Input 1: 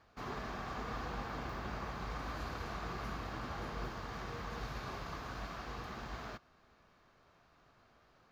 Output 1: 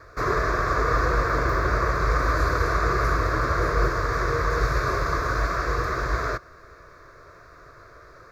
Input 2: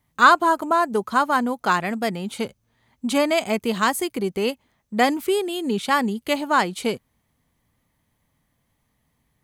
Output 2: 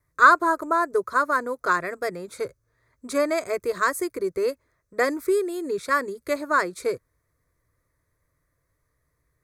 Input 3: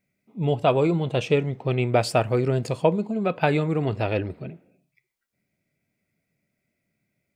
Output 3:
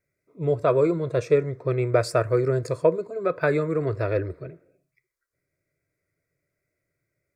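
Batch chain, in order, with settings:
high shelf 8000 Hz -7 dB; fixed phaser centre 810 Hz, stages 6; vibrato 1.1 Hz 8.1 cents; match loudness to -24 LUFS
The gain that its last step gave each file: +22.0, +1.0, +2.5 dB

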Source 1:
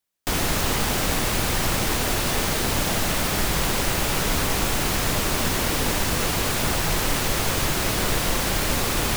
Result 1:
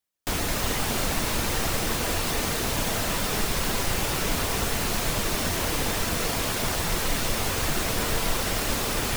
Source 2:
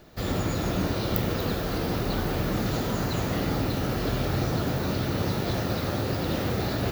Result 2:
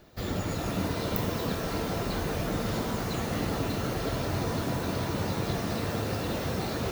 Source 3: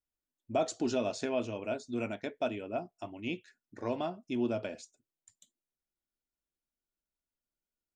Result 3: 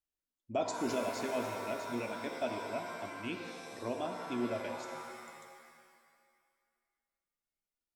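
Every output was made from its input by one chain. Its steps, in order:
reverb removal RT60 0.68 s; shimmer reverb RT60 1.9 s, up +7 st, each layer -2 dB, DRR 5 dB; gain -3.5 dB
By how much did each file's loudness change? -3.5, -3.0, -2.5 LU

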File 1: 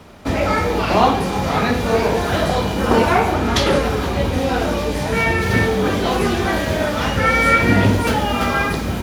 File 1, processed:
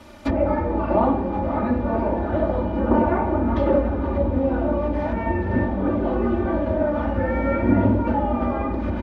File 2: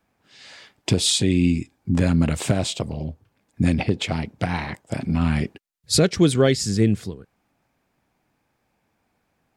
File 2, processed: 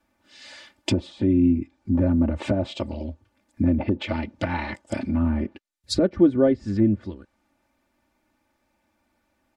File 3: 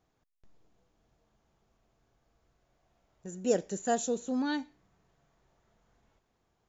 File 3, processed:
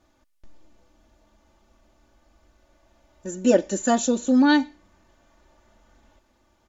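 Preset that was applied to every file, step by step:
treble ducked by the level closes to 850 Hz, closed at -16 dBFS; comb 3.4 ms, depth 95%; normalise peaks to -6 dBFS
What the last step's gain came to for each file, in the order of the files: -4.5, -2.5, +9.0 dB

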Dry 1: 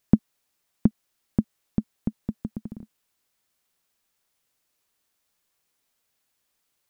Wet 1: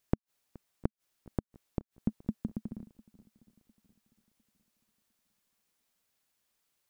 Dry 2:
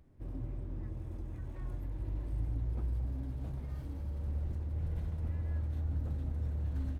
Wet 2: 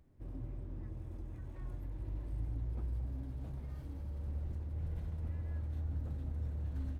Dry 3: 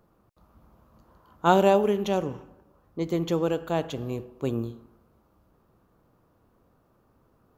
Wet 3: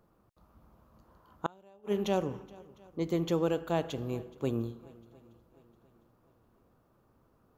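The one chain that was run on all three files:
flipped gate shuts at -12 dBFS, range -35 dB; swung echo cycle 0.704 s, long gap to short 1.5:1, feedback 35%, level -23 dB; gain -3.5 dB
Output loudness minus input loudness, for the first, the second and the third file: -10.0, -3.5, -7.5 LU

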